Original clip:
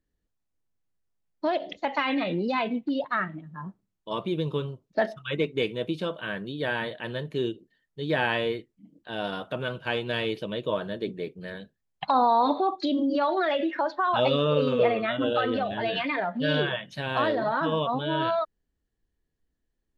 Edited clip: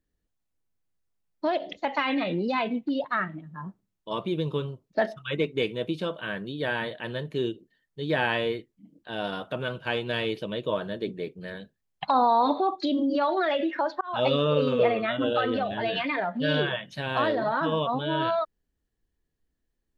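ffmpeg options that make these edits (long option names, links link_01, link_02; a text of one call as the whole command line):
ffmpeg -i in.wav -filter_complex "[0:a]asplit=2[link_01][link_02];[link_01]atrim=end=14.01,asetpts=PTS-STARTPTS,afade=type=out:start_time=14.006:duration=0.004:curve=hsin[link_03];[link_02]atrim=start=14.01,asetpts=PTS-STARTPTS,afade=type=in:duration=0.26[link_04];[link_03][link_04]concat=n=2:v=0:a=1" out.wav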